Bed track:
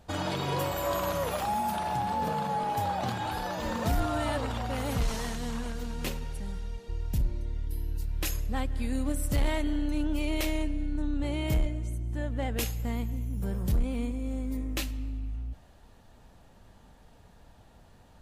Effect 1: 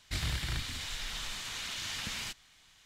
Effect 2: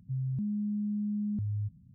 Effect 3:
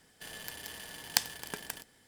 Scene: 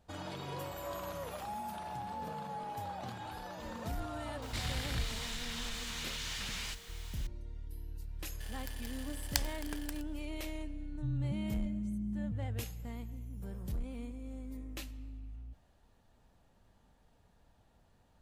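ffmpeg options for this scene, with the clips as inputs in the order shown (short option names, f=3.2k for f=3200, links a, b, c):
-filter_complex "[0:a]volume=-11.5dB[a];[1:a]aeval=exprs='val(0)+0.5*0.00562*sgn(val(0))':c=same[b];[2:a]equalizer=f=150:w=1.5:g=9.5[c];[b]atrim=end=2.85,asetpts=PTS-STARTPTS,volume=-4dB,afade=t=in:d=0.004:c=hsin,afade=t=out:st=2.846:d=0.004:c=hsin,adelay=4420[d];[3:a]atrim=end=2.07,asetpts=PTS-STARTPTS,volume=-5.5dB,afade=t=in:d=0.004:c=hsin,afade=t=out:st=2.066:d=0.004:c=hsin,adelay=8190[e];[c]atrim=end=1.94,asetpts=PTS-STARTPTS,volume=-10.5dB,afade=t=in:d=0.004:c=hsin,afade=t=out:st=1.936:d=0.004:c=hsin,adelay=10930[f];[a][d][e][f]amix=inputs=4:normalize=0"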